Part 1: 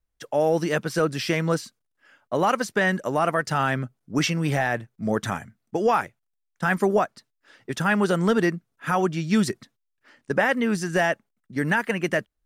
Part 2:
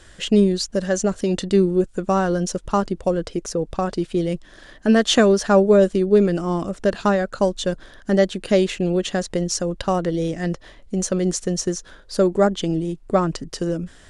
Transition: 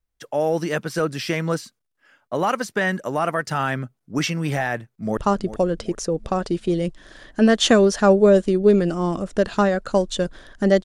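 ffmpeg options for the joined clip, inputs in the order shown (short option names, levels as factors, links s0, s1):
-filter_complex "[0:a]apad=whole_dur=10.84,atrim=end=10.84,atrim=end=5.172[s0];[1:a]atrim=start=2.638:end=8.31[s1];[s0][s1]acrossfade=d=0.004:c1=hsin:c2=hsin,asplit=2[s2][s3];[s3]afade=t=in:st=4.75:d=0.01,afade=t=out:st=5.17:d=0.01,aecho=0:1:390|780|1170|1560:0.237137|0.106712|0.0480203|0.0216091[s4];[s2][s4]amix=inputs=2:normalize=0"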